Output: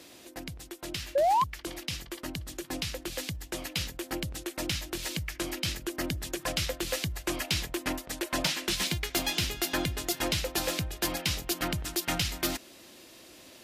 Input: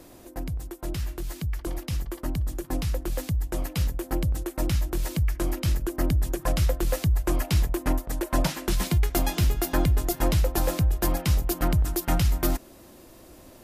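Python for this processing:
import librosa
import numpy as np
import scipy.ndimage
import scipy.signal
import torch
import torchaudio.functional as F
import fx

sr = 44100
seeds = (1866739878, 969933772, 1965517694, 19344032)

y = fx.weighting(x, sr, curve='D')
y = fx.spec_paint(y, sr, seeds[0], shape='rise', start_s=1.15, length_s=0.29, low_hz=530.0, high_hz=1100.0, level_db=-18.0)
y = 10.0 ** (-13.0 / 20.0) * np.tanh(y / 10.0 ** (-13.0 / 20.0))
y = F.gain(torch.from_numpy(y), -4.0).numpy()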